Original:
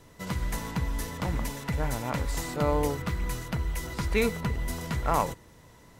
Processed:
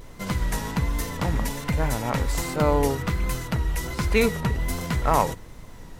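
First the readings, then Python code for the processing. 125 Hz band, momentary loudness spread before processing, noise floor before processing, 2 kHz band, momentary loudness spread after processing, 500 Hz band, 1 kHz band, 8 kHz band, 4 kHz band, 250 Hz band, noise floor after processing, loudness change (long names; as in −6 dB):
+5.0 dB, 7 LU, −54 dBFS, +5.0 dB, 7 LU, +5.0 dB, +5.0 dB, +5.0 dB, +5.0 dB, +5.0 dB, −43 dBFS, +5.0 dB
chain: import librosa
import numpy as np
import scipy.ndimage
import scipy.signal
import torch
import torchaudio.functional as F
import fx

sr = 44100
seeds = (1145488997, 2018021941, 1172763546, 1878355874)

y = fx.vibrato(x, sr, rate_hz=1.3, depth_cents=68.0)
y = fx.dmg_noise_colour(y, sr, seeds[0], colour='brown', level_db=-47.0)
y = F.gain(torch.from_numpy(y), 5.0).numpy()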